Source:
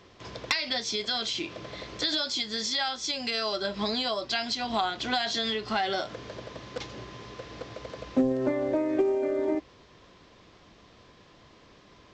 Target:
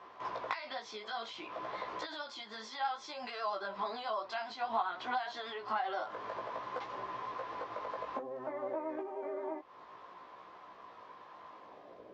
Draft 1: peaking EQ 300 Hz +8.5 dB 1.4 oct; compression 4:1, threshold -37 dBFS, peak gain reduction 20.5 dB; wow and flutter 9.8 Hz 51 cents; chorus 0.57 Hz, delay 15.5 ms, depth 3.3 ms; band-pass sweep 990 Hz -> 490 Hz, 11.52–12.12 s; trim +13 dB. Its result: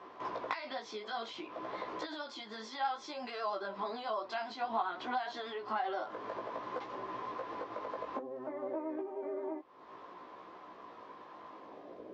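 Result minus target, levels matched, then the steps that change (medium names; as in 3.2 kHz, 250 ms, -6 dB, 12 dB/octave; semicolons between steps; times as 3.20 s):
250 Hz band +4.0 dB
remove: peaking EQ 300 Hz +8.5 dB 1.4 oct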